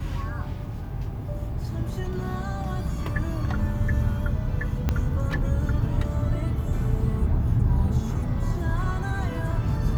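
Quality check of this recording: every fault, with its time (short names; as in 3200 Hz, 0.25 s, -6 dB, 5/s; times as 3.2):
4.89 pop -11 dBFS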